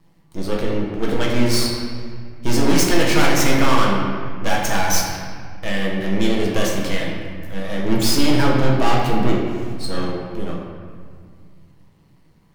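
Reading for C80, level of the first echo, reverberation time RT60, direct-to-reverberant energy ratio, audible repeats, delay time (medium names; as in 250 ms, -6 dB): 3.0 dB, no echo, 2.0 s, -3.5 dB, no echo, no echo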